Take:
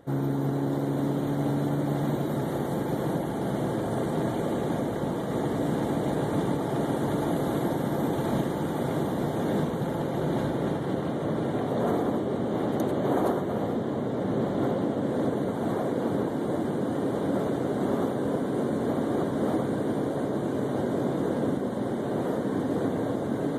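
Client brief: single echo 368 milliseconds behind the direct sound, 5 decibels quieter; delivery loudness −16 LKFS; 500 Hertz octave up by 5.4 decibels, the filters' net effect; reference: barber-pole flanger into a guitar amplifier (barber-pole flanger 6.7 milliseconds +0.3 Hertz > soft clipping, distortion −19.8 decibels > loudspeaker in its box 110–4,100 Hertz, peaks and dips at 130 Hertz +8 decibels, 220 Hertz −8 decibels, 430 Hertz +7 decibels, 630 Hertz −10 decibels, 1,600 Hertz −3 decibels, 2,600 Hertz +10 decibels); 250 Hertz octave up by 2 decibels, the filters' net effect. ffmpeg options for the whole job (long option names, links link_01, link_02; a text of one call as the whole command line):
ffmpeg -i in.wav -filter_complex "[0:a]equalizer=frequency=250:width_type=o:gain=3.5,equalizer=frequency=500:width_type=o:gain=3,aecho=1:1:368:0.562,asplit=2[link_01][link_02];[link_02]adelay=6.7,afreqshift=0.3[link_03];[link_01][link_03]amix=inputs=2:normalize=1,asoftclip=threshold=-18.5dB,highpass=110,equalizer=frequency=130:width_type=q:width=4:gain=8,equalizer=frequency=220:width_type=q:width=4:gain=-8,equalizer=frequency=430:width_type=q:width=4:gain=7,equalizer=frequency=630:width_type=q:width=4:gain=-10,equalizer=frequency=1600:width_type=q:width=4:gain=-3,equalizer=frequency=2600:width_type=q:width=4:gain=10,lowpass=frequency=4100:width=0.5412,lowpass=frequency=4100:width=1.3066,volume=11.5dB" out.wav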